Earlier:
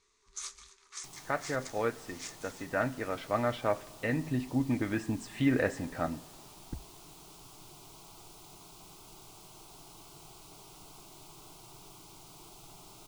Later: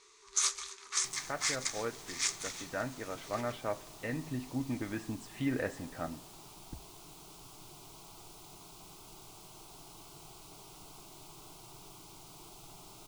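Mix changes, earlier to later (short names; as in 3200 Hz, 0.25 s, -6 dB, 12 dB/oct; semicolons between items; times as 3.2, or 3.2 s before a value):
speech -6.0 dB; first sound +11.5 dB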